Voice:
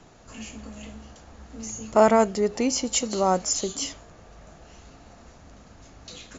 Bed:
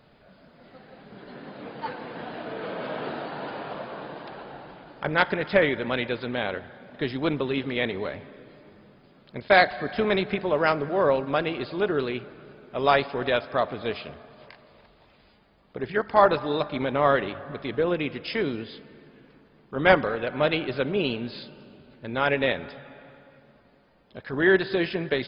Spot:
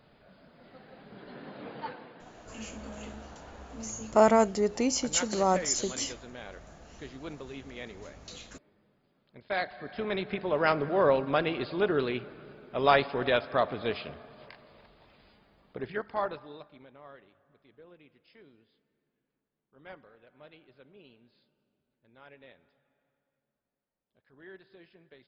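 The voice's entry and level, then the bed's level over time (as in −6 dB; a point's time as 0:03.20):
2.20 s, −3.5 dB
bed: 0:01.79 −3.5 dB
0:02.22 −16 dB
0:09.36 −16 dB
0:10.79 −2 dB
0:15.64 −2 dB
0:17.03 −30 dB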